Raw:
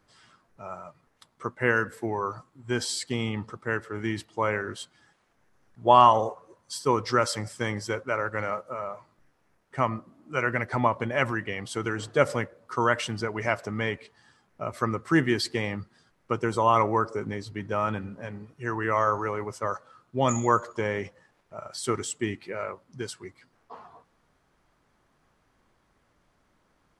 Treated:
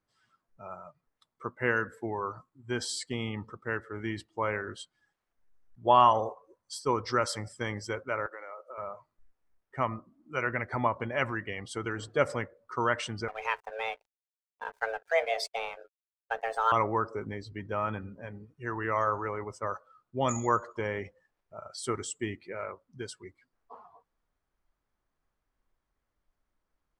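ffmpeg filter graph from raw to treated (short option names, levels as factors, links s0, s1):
-filter_complex "[0:a]asettb=1/sr,asplit=3[s0][s1][s2];[s0]atrim=end=8.264[s3];[s1]atrim=start=8.26:end=8.78,asetpts=PTS-STARTPTS,afade=t=in:d=0.004:c=qsin,afade=t=out:st=0.516:d=0.004:c=qsin,highpass=f=330:w=0.5412,highpass=f=330:w=1.3066,acompressor=threshold=0.0178:ratio=5:attack=3.2:release=140:knee=1:detection=peak[s4];[s2]atrim=start=8.776[s5];[s3][s4]acrossfade=d=0.004:c1=hsin:c2=qsin[s6];[s6][s5]acrossfade=d=0.004:c1=qsin:c2=hsin,asettb=1/sr,asplit=3[s7][s8][s9];[s7]atrim=end=13.284[s10];[s8]atrim=start=13.28:end=16.72,asetpts=PTS-STARTPTS,afade=t=in:d=0.004:c=qsin,afade=t=out:st=3.436:d=0.004:c=qsin,bandreject=f=50:t=h:w=6,bandreject=f=100:t=h:w=6,bandreject=f=150:t=h:w=6,bandreject=f=200:t=h:w=6,bandreject=f=250:t=h:w=6,bandreject=f=300:t=h:w=6,bandreject=f=350:t=h:w=6,afreqshift=330,aeval=exprs='sgn(val(0))*max(abs(val(0))-0.00944,0)':c=same[s11];[s9]atrim=start=16.716[s12];[s10][s11]acrossfade=d=0.004:c1=hsin:c2=qsin[s13];[s13][s12]acrossfade=d=0.004:c1=qsin:c2=hsin,afftdn=nr=13:nf=-47,asubboost=boost=3.5:cutoff=64,volume=0.631"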